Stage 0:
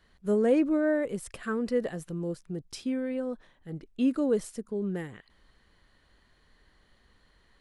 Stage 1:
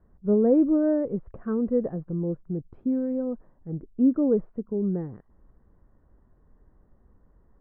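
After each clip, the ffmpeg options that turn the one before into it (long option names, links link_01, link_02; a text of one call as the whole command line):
ffmpeg -i in.wav -af "lowpass=frequency=1300:width=0.5412,lowpass=frequency=1300:width=1.3066,tiltshelf=frequency=730:gain=7" out.wav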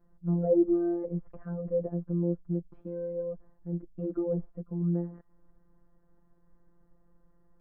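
ffmpeg -i in.wav -filter_complex "[0:a]afftfilt=real='hypot(re,im)*cos(PI*b)':imag='0':win_size=1024:overlap=0.75,acrossover=split=790[link_01][link_02];[link_02]acompressor=threshold=-57dB:ratio=5[link_03];[link_01][link_03]amix=inputs=2:normalize=0" out.wav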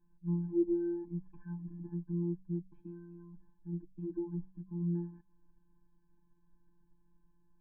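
ffmpeg -i in.wav -af "bandreject=frequency=46.86:width_type=h:width=4,bandreject=frequency=93.72:width_type=h:width=4,bandreject=frequency=140.58:width_type=h:width=4,bandreject=frequency=187.44:width_type=h:width=4,afftfilt=real='re*eq(mod(floor(b*sr/1024/370),2),0)':imag='im*eq(mod(floor(b*sr/1024/370),2),0)':win_size=1024:overlap=0.75,volume=-5dB" out.wav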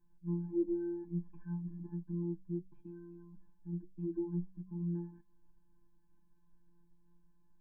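ffmpeg -i in.wav -af "flanger=delay=7.8:depth=4.3:regen=58:speed=0.36:shape=triangular,volume=3dB" out.wav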